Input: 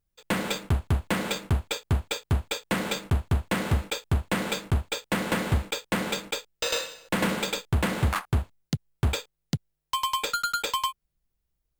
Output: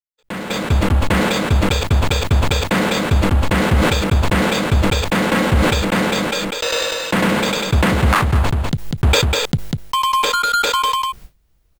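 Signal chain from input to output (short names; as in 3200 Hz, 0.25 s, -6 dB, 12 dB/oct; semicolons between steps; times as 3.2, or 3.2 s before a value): expander -45 dBFS; echo 0.197 s -8 dB; AGC gain up to 16 dB; high shelf 5500 Hz -6 dB; sustainer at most 21 dB/s; gain -4.5 dB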